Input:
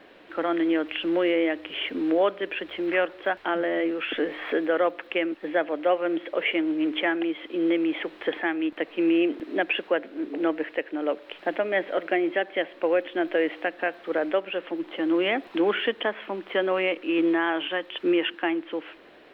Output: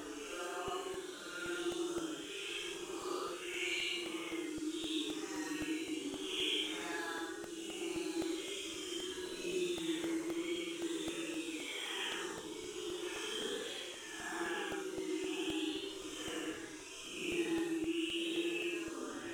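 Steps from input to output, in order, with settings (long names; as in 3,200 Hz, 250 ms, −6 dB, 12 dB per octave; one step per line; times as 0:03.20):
linear delta modulator 64 kbit/s, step −34.5 dBFS
reverb reduction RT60 1.7 s
noise gate with hold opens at −37 dBFS
high-shelf EQ 3,500 Hz +10 dB
downward compressor, threshold −30 dBFS, peak gain reduction 12 dB
phaser with its sweep stopped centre 2,900 Hz, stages 8
on a send: delay that swaps between a low-pass and a high-pass 191 ms, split 1,300 Hz, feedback 69%, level −9 dB
on the sum: delay with pitch and tempo change per echo 477 ms, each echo +2 semitones, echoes 3, each echo −6 dB
extreme stretch with random phases 5.4×, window 0.10 s, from 0:05.78
regular buffer underruns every 0.26 s, samples 64, repeat, from 0:00.68
level −3.5 dB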